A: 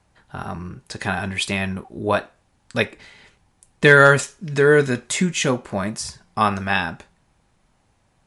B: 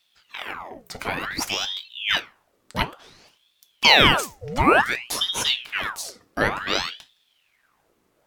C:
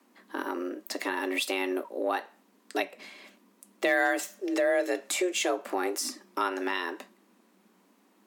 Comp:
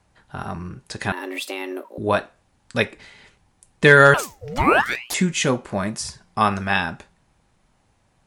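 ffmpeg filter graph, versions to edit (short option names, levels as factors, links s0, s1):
-filter_complex "[0:a]asplit=3[s0][s1][s2];[s0]atrim=end=1.122[s3];[2:a]atrim=start=1.118:end=1.982[s4];[s1]atrim=start=1.978:end=4.142[s5];[1:a]atrim=start=4.138:end=5.142[s6];[s2]atrim=start=5.138[s7];[s3][s4]acrossfade=d=0.004:c1=hsin:c2=hsin[s8];[s8][s5]acrossfade=d=0.004:c1=hsin:c2=hsin[s9];[s9][s6]acrossfade=d=0.004:c1=hsin:c2=hsin[s10];[s10][s7]acrossfade=d=0.004:c1=hsin:c2=hsin"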